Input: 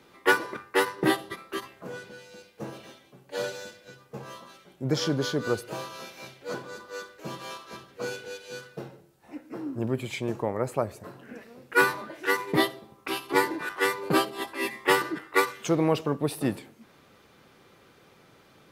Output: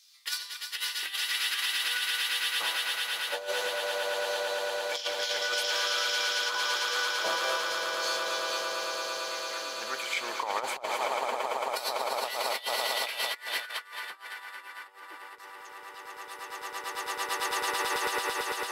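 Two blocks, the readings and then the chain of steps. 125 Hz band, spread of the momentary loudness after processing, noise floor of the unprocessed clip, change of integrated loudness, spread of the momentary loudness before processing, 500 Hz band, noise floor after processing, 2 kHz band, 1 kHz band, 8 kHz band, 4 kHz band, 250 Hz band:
below −30 dB, 14 LU, −58 dBFS, −1.5 dB, 19 LU, −5.0 dB, −47 dBFS, −0.5 dB, −0.5 dB, +6.0 dB, +8.0 dB, −20.0 dB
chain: auto-filter high-pass saw down 0.26 Hz 520–5,200 Hz
echo that builds up and dies away 112 ms, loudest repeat 8, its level −8.5 dB
compressor whose output falls as the input rises −32 dBFS, ratio −0.5

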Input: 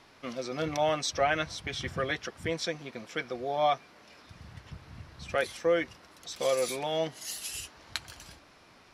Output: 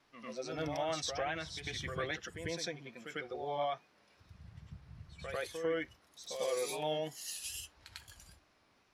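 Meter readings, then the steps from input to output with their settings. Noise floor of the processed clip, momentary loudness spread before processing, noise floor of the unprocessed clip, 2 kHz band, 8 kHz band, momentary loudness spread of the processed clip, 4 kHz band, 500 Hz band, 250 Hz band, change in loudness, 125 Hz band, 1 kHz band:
−70 dBFS, 20 LU, −58 dBFS, −7.5 dB, −5.0 dB, 17 LU, −6.0 dB, −7.5 dB, −6.5 dB, −7.0 dB, −5.5 dB, −8.5 dB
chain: noise reduction from a noise print of the clip's start 9 dB
pitch vibrato 2.4 Hz 70 cents
brickwall limiter −22.5 dBFS, peak gain reduction 10 dB
backwards echo 98 ms −6.5 dB
level −5 dB

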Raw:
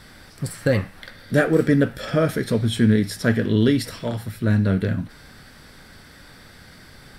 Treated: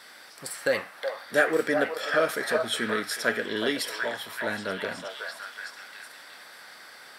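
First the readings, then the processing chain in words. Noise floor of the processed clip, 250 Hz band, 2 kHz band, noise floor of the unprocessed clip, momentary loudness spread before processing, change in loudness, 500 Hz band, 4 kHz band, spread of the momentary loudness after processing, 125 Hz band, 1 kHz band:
−49 dBFS, −14.5 dB, +2.0 dB, −47 dBFS, 11 LU, −7.0 dB, −4.0 dB, +0.5 dB, 20 LU, −26.0 dB, +2.0 dB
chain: high-pass filter 590 Hz 12 dB per octave
on a send: echo through a band-pass that steps 371 ms, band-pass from 840 Hz, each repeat 0.7 octaves, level −0.5 dB

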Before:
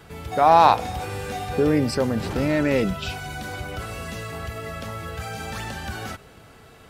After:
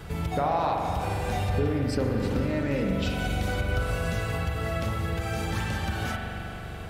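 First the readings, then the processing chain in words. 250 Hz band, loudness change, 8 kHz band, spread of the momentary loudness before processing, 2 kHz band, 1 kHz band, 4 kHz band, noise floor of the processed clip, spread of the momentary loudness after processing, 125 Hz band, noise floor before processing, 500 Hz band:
−3.5 dB, −5.0 dB, −4.0 dB, 16 LU, −2.0 dB, −9.5 dB, −3.5 dB, −37 dBFS, 4 LU, +2.5 dB, −49 dBFS, −5.5 dB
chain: low-shelf EQ 130 Hz +11.5 dB
downward compressor 6 to 1, threshold −29 dBFS, peak gain reduction 18.5 dB
spring reverb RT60 3.2 s, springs 42 ms, chirp 20 ms, DRR 0 dB
level +2.5 dB

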